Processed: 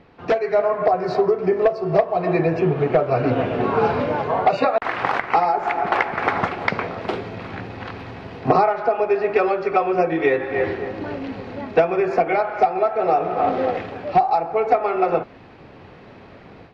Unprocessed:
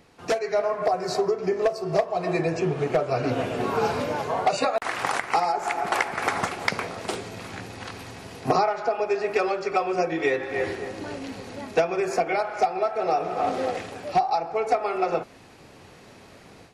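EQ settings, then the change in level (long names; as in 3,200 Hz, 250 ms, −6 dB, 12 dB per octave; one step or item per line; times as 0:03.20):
high-frequency loss of the air 320 metres
+6.5 dB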